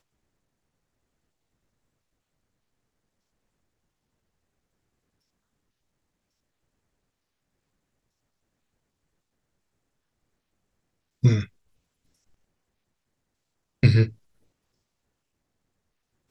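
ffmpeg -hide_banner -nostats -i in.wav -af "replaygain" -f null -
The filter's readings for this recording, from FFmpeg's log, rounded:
track_gain = +56.7 dB
track_peak = 0.360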